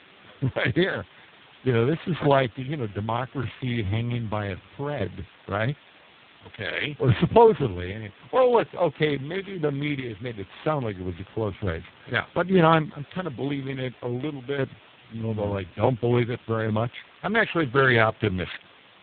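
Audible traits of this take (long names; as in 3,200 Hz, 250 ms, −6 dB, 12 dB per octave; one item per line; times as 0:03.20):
a buzz of ramps at a fixed pitch in blocks of 8 samples
sample-and-hold tremolo 2.4 Hz, depth 75%
a quantiser's noise floor 8 bits, dither triangular
AMR narrowband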